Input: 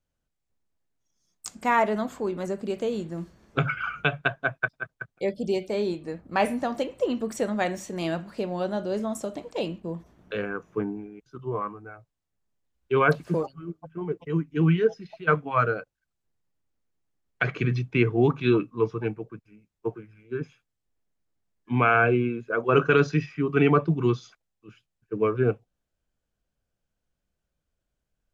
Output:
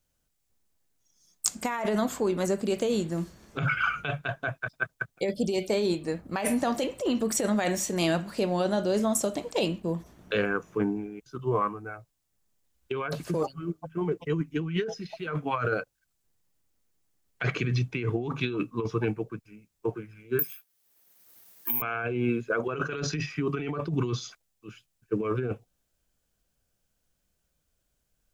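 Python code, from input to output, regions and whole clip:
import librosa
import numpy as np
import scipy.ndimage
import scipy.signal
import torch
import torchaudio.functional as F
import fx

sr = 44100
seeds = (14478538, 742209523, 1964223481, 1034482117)

y = fx.chain(x, sr, fx.highpass(hz=630.0, slope=6),
    fx.resample_bad(factor=3, down='filtered', up='zero_stuff'),
    fx.band_squash(depth_pct=70), at=(20.39, 21.82))
y = fx.high_shelf(y, sr, hz=4500.0, db=11.0)
y = fx.over_compress(y, sr, threshold_db=-27.0, ratio=-1.0)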